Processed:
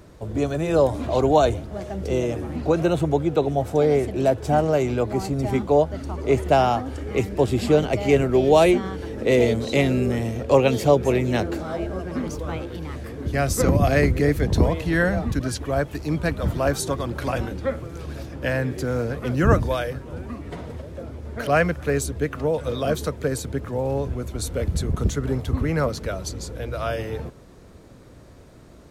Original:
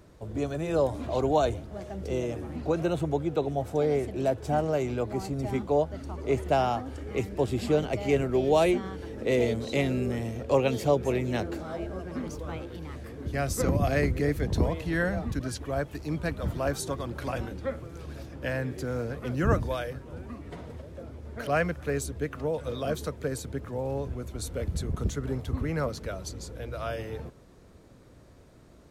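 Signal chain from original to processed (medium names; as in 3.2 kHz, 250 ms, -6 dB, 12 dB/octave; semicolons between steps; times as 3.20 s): trim +7 dB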